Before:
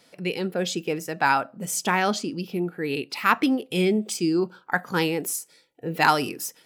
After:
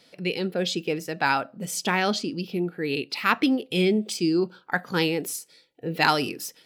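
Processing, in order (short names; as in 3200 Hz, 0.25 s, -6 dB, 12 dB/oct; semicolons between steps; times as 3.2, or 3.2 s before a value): EQ curve 520 Hz 0 dB, 1000 Hz -4 dB, 4300 Hz +4 dB, 6800 Hz -4 dB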